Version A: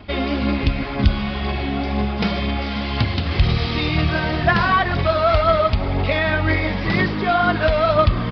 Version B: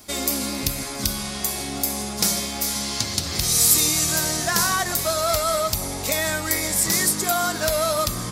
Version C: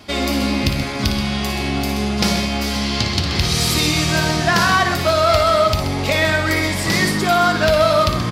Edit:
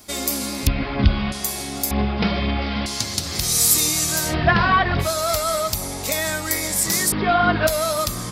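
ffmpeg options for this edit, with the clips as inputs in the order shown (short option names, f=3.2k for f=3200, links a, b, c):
-filter_complex "[0:a]asplit=4[a][b][c][d];[1:a]asplit=5[e][f][g][h][i];[e]atrim=end=0.672[j];[a]atrim=start=0.668:end=1.322[k];[f]atrim=start=1.318:end=1.912[l];[b]atrim=start=1.908:end=2.862[m];[g]atrim=start=2.858:end=4.35[n];[c]atrim=start=4.25:end=5.09[o];[h]atrim=start=4.99:end=7.122[p];[d]atrim=start=7.118:end=7.672[q];[i]atrim=start=7.668[r];[j][k]acrossfade=d=0.004:c1=hsin:c2=hsin[s];[s][l]acrossfade=d=0.004:c1=hsin:c2=hsin[t];[t][m]acrossfade=d=0.004:c1=hsin:c2=hsin[u];[u][n]acrossfade=d=0.004:c1=hsin:c2=hsin[v];[v][o]acrossfade=d=0.1:c1=tri:c2=tri[w];[w][p]acrossfade=d=0.1:c1=tri:c2=tri[x];[x][q]acrossfade=d=0.004:c1=hsin:c2=hsin[y];[y][r]acrossfade=d=0.004:c1=hsin:c2=hsin"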